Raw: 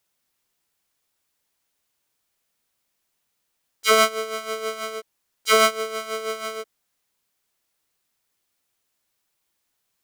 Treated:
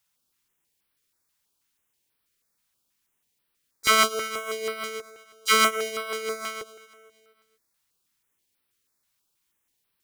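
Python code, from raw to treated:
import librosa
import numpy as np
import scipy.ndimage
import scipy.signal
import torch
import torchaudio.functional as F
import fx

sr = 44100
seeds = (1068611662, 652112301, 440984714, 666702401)

y = fx.peak_eq(x, sr, hz=670.0, db=-6.5, octaves=0.48)
y = fx.echo_feedback(y, sr, ms=235, feedback_pct=49, wet_db=-16.5)
y = fx.filter_held_notch(y, sr, hz=6.2, low_hz=370.0, high_hz=6800.0)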